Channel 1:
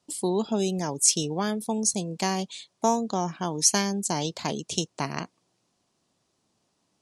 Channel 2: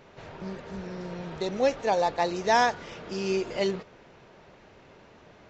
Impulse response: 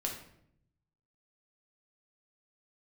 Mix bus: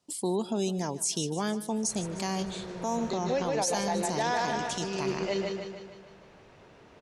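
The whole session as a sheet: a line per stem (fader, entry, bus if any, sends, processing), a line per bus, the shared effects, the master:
-2.5 dB, 0.00 s, no send, echo send -18 dB, none
-3.5 dB, 1.70 s, no send, echo send -4 dB, none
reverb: none
echo: feedback delay 151 ms, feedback 52%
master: peak limiter -19.5 dBFS, peak gain reduction 11.5 dB

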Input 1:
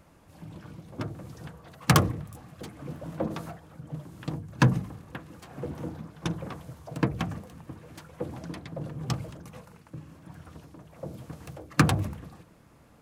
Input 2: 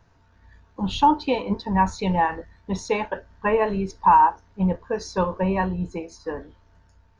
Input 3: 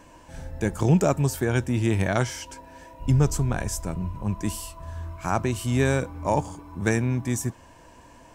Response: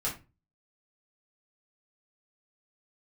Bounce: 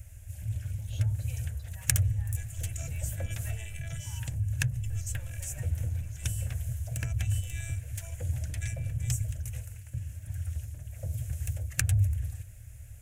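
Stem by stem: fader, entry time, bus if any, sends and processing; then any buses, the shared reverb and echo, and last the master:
+2.5 dB, 0.00 s, bus A, no send, bass shelf 370 Hz +10.5 dB
-18.0 dB, 0.00 s, bus A, no send, peak limiter -14 dBFS, peak gain reduction 7 dB
-14.5 dB, 1.75 s, no bus, no send, peaking EQ 2.9 kHz +11 dB 0.51 oct; robot voice 335 Hz
bus A: 0.0 dB, bass shelf 320 Hz +5.5 dB; compression 4:1, threshold -20 dBFS, peak gain reduction 16.5 dB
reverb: none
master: FFT filter 110 Hz 0 dB, 160 Hz -26 dB, 360 Hz -29 dB, 620 Hz -12 dB, 1.1 kHz -26 dB, 1.6 kHz -4 dB, 2.6 kHz 0 dB, 4.5 kHz -7 dB, 7 kHz +11 dB

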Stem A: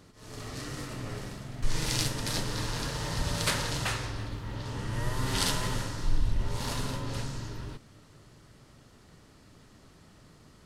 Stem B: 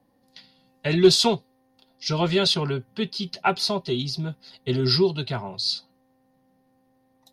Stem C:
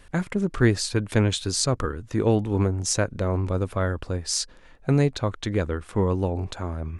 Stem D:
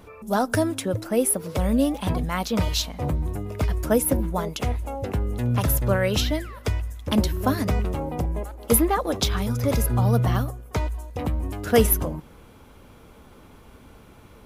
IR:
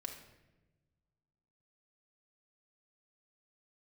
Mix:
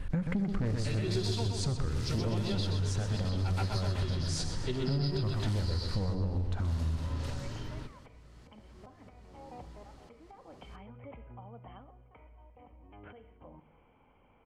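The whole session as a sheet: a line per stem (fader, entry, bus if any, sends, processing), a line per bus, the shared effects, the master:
-3.5 dB, 0.10 s, bus B, send -7.5 dB, no echo send, treble shelf 9.5 kHz -8.5 dB
-5.5 dB, 0.00 s, bus A, no send, echo send -3.5 dB, none
+1.0 dB, 0.00 s, bus A, send -12 dB, echo send -11.5 dB, tone controls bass +13 dB, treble -10 dB; saturation -13 dBFS, distortion -9 dB
-11.5 dB, 1.40 s, bus B, send -6.5 dB, no echo send, compression 16:1, threshold -28 dBFS, peak gain reduction 17 dB; rippled Chebyshev low-pass 3.2 kHz, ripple 9 dB
bus A: 0.0 dB, compression, threshold -24 dBFS, peak gain reduction 11.5 dB
bus B: 0.0 dB, slow attack 397 ms; peak limiter -33 dBFS, peak gain reduction 17 dB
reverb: on, RT60 1.1 s, pre-delay 4 ms
echo: feedback delay 126 ms, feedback 50%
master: compression 5:1, threshold -29 dBFS, peak gain reduction 12.5 dB

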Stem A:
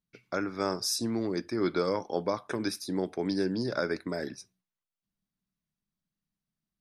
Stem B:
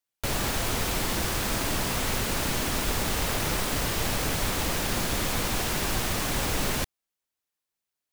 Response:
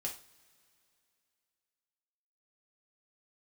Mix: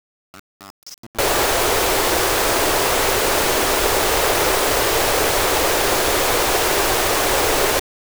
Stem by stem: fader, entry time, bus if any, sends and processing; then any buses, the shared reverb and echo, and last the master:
-4.5 dB, 0.00 s, no send, level held to a coarse grid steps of 10 dB; static phaser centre 2.5 kHz, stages 8
+1.0 dB, 0.95 s, no send, FFT filter 100 Hz 0 dB, 210 Hz -5 dB, 390 Hz +15 dB, 2.9 kHz +9 dB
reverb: none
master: word length cut 6-bit, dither none

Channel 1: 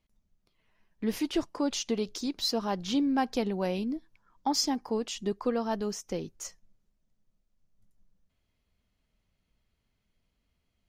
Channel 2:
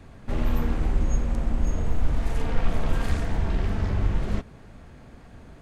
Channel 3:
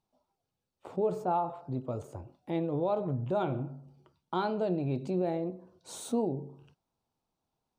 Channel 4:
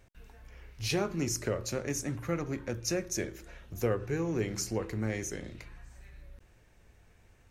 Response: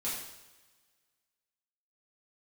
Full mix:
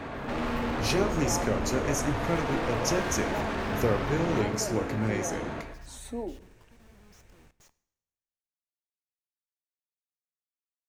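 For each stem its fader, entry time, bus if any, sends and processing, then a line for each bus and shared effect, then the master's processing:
-20.0 dB, 1.20 s, send -18.5 dB, no echo send, compressor with a negative ratio -34 dBFS, ratio -0.5; Schmitt trigger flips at -38 dBFS
-17.0 dB, 0.00 s, send -8 dB, echo send -7 dB, treble shelf 5.7 kHz -8.5 dB; overdrive pedal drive 43 dB, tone 1.7 kHz, clips at -9 dBFS
-1.0 dB, 0.00 s, send -19.5 dB, no echo send, elliptic high-pass 190 Hz; reverb removal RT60 1.7 s; peak limiter -27.5 dBFS, peak gain reduction 7.5 dB
+2.5 dB, 0.00 s, send -18 dB, no echo send, none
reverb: on, pre-delay 3 ms
echo: delay 122 ms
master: none

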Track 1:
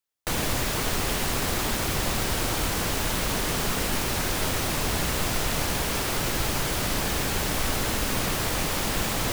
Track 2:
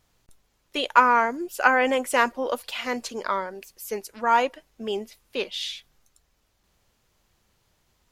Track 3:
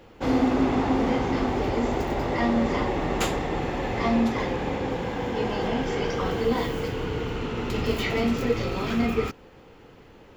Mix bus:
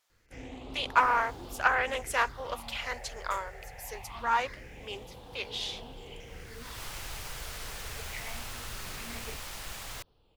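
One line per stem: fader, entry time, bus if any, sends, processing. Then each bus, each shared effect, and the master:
-12.0 dB, 0.70 s, no send, auto duck -24 dB, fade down 1.70 s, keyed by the second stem
-4.0 dB, 0.00 s, no send, high-pass 330 Hz
-11.5 dB, 0.10 s, no send, phase shifter stages 6, 0.23 Hz, lowest notch 260–2100 Hz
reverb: none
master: peaking EQ 250 Hz -13.5 dB 2.3 oct; loudspeaker Doppler distortion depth 0.28 ms

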